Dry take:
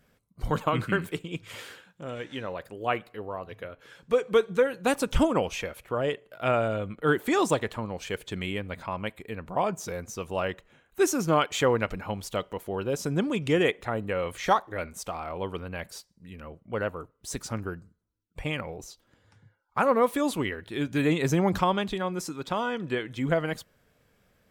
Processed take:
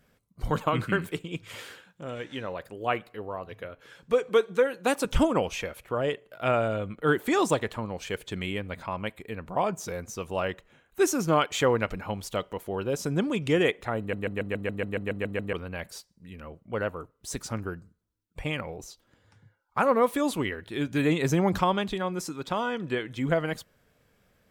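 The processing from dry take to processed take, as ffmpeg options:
-filter_complex "[0:a]asettb=1/sr,asplit=3[s0][s1][s2];[s0]atrim=end=4.294[s3];[s1]atrim=start=4.29:end=5.05,asetpts=PTS-STARTPTS,afade=t=in:d=0.004:c=qsin,afade=t=out:st=0.756:d=0.004:c=qsin,highpass=220[s4];[s2]atrim=start=5.046[s5];[s3][s4]acrossfade=d=0.004:c1=hsin:c2=qsin[s6];[s6][s5]acrossfade=d=0.004:c1=qsin:c2=hsin,asplit=12[s7][s8][s9][s10][s11][s12][s13][s14][s15][s16][s17][s18];[s7]atrim=end=14.132[s19];[s8]atrim=start=13.988:end=14.132[s20];[s9]atrim=start=13.988:end=14.132[s21];[s10]atrim=start=13.988:end=14.132[s22];[s11]atrim=start=13.988:end=14.132[s23];[s12]atrim=start=13.988:end=14.132[s24];[s13]atrim=start=13.988:end=14.132[s25];[s14]atrim=start=13.988:end=14.132[s26];[s15]atrim=start=13.988:end=14.132[s27];[s16]atrim=start=13.988:end=14.132[s28];[s17]atrim=start=13.988:end=14.132[s29];[s18]atrim=start=15.528[s30];[s19][s20]acrossfade=d=0.004:c1=hsin:c2=hsin[s31];[s31][s21]acrossfade=d=0.004:c1=hsin:c2=hsin[s32];[s32][s22]acrossfade=d=0.004:c1=hsin:c2=hsin[s33];[s33][s23]acrossfade=d=0.004:c1=hsin:c2=hsin[s34];[s34][s24]acrossfade=d=0.004:c1=hsin:c2=hsin[s35];[s35][s25]acrossfade=d=0.004:c1=hsin:c2=hsin[s36];[s36][s26]acrossfade=d=0.004:c1=hsin:c2=hsin[s37];[s37][s27]acrossfade=d=0.004:c1=hsin:c2=hsin[s38];[s38][s28]acrossfade=d=0.004:c1=hsin:c2=hsin[s39];[s39][s29]acrossfade=d=0.004:c1=hsin:c2=hsin[s40];[s40][s30]acrossfade=d=0.004:c1=hsin:c2=hsin"

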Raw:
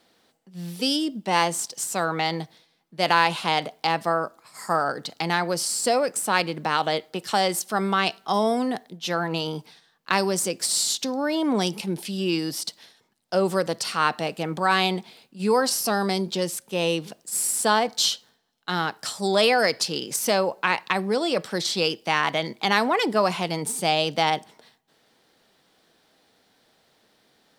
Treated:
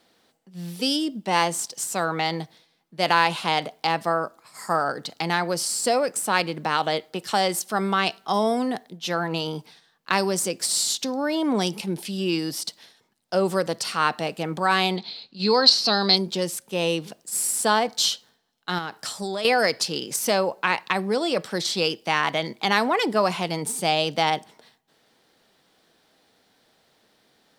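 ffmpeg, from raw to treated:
-filter_complex "[0:a]asplit=3[s0][s1][s2];[s0]afade=t=out:st=14.96:d=0.02[s3];[s1]lowpass=f=4200:t=q:w=9.7,afade=t=in:st=14.96:d=0.02,afade=t=out:st=16.15:d=0.02[s4];[s2]afade=t=in:st=16.15:d=0.02[s5];[s3][s4][s5]amix=inputs=3:normalize=0,asettb=1/sr,asplit=3[s6][s7][s8];[s6]atrim=end=18.784[s9];[s7]atrim=start=18.78:end=19.45,asetpts=PTS-STARTPTS,afade=t=in:d=0.004:c=qsin,afade=t=out:st=0.666:d=0.004:c=qsin,acompressor=threshold=0.0501:ratio=4:attack=3.2:release=140:knee=1:detection=peak[s10];[s8]atrim=start=19.446[s11];[s9][s10]acrossfade=d=0.004:c1=hsin:c2=qsin[s12];[s12][s11]acrossfade=d=0.004:c1=qsin:c2=hsin"

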